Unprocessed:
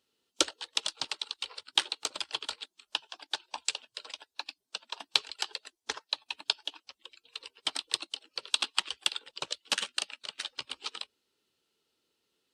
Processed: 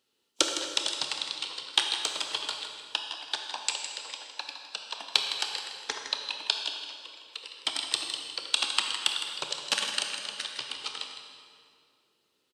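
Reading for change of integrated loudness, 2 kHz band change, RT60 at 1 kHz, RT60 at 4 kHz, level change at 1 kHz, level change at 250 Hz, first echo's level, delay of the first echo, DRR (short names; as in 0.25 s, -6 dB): +3.5 dB, +3.5 dB, 2.1 s, 1.8 s, +3.5 dB, +3.0 dB, -10.0 dB, 0.16 s, 2.5 dB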